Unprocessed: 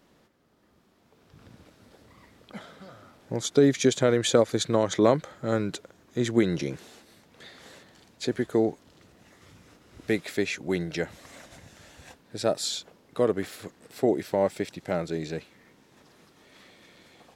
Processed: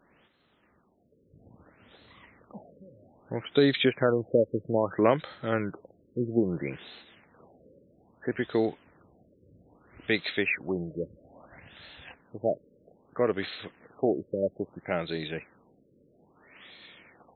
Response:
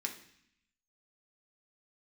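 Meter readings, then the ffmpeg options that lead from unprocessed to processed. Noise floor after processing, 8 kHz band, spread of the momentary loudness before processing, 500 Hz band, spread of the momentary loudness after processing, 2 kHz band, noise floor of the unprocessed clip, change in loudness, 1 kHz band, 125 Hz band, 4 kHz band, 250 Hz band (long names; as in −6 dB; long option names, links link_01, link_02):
−66 dBFS, below −40 dB, 18 LU, −2.5 dB, 20 LU, +2.0 dB, −63 dBFS, −2.5 dB, −2.0 dB, −3.5 dB, −3.0 dB, −3.0 dB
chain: -af "crystalizer=i=7.5:c=0,afftfilt=real='re*lt(b*sr/1024,570*pow(4300/570,0.5+0.5*sin(2*PI*0.61*pts/sr)))':imag='im*lt(b*sr/1024,570*pow(4300/570,0.5+0.5*sin(2*PI*0.61*pts/sr)))':win_size=1024:overlap=0.75,volume=-3.5dB"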